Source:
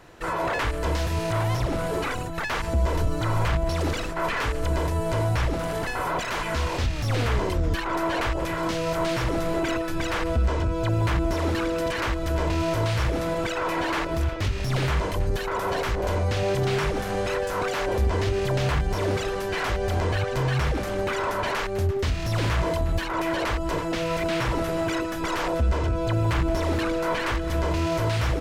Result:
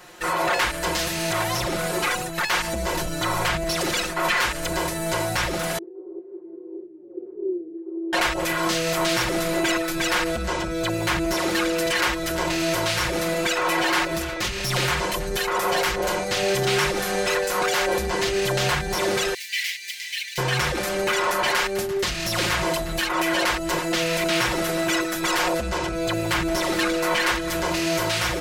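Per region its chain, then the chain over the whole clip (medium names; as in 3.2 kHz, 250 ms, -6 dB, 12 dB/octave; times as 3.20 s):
5.78–8.13 s: Butterworth band-pass 370 Hz, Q 5.3 + tilt EQ -2 dB/octave
19.34–20.38 s: median filter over 5 samples + elliptic high-pass 2 kHz
whole clip: tilt EQ +2.5 dB/octave; comb 5.6 ms, depth 92%; trim +2 dB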